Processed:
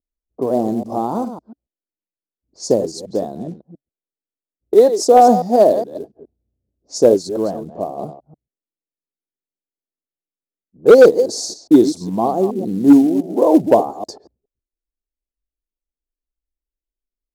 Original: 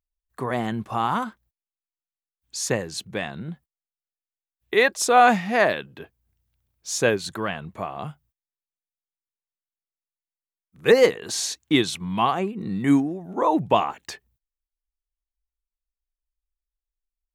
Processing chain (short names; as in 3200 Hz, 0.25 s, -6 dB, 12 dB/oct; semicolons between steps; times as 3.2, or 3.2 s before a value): reverse delay 0.139 s, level -10.5 dB; EQ curve 140 Hz 0 dB, 280 Hz +13 dB, 640 Hz +12 dB, 1800 Hz -22 dB, 2700 Hz -30 dB, 4700 Hz +6 dB, 7300 Hz +2 dB, 11000 Hz -4 dB; short-mantissa float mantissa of 4-bit; low-pass opened by the level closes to 380 Hz, open at -20 dBFS; gain -1.5 dB